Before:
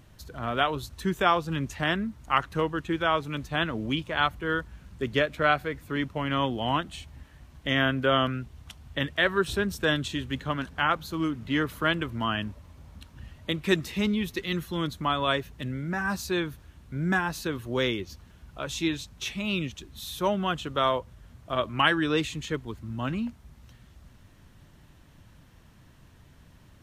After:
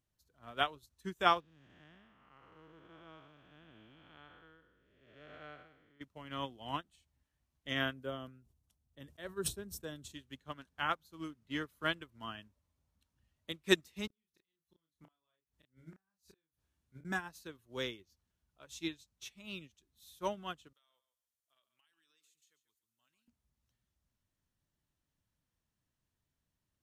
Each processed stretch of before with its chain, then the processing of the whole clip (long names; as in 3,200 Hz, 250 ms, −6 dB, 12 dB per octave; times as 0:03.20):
0:01.40–0:06.01: spectrum smeared in time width 406 ms + low-pass filter 4,200 Hz
0:07.93–0:10.14: parametric band 2,300 Hz −11 dB 2.9 octaves + level that may fall only so fast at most 55 dB per second
0:14.07–0:17.05: gate with flip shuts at −23 dBFS, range −31 dB + double-tracking delay 31 ms −3 dB
0:20.73–0:23.28: first-order pre-emphasis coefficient 0.97 + downward compressor 10 to 1, threshold −42 dBFS + repeating echo 139 ms, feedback 22%, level −12 dB
whole clip: bass and treble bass −2 dB, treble +8 dB; expander for the loud parts 2.5 to 1, over −37 dBFS; level −2.5 dB